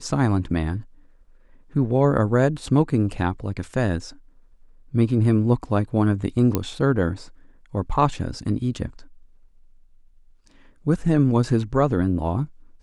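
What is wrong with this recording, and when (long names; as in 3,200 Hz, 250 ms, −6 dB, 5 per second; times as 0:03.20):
0:06.55: click −7 dBFS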